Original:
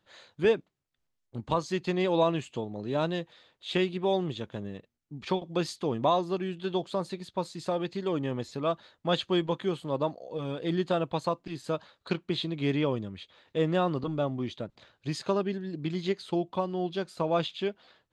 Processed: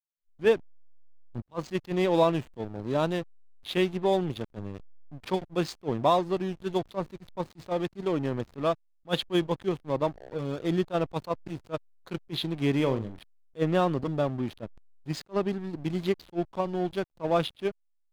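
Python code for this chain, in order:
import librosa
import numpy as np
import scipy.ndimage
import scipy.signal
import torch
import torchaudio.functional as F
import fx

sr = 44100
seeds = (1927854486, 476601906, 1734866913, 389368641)

y = fx.backlash(x, sr, play_db=-35.0)
y = fx.room_flutter(y, sr, wall_m=7.6, rt60_s=0.25, at=(12.75, 13.19))
y = fx.attack_slew(y, sr, db_per_s=430.0)
y = F.gain(torch.from_numpy(y), 2.5).numpy()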